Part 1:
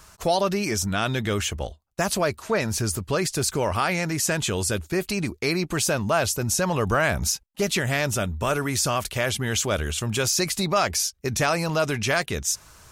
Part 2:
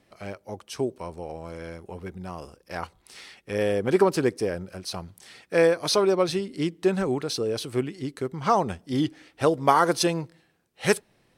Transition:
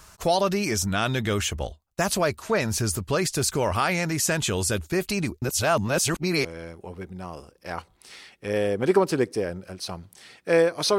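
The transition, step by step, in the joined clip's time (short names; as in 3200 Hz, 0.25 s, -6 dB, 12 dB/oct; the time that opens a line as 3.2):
part 1
5.42–6.45 reverse
6.45 switch to part 2 from 1.5 s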